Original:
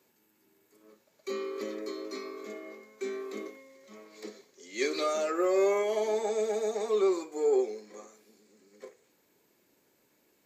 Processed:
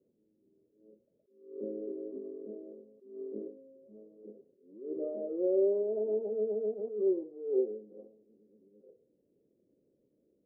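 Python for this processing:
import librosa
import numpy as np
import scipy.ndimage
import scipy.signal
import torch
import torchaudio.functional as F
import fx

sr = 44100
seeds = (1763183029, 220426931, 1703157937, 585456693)

y = scipy.signal.sosfilt(scipy.signal.ellip(4, 1.0, 70, 540.0, 'lowpass', fs=sr, output='sos'), x)
y = fx.attack_slew(y, sr, db_per_s=100.0)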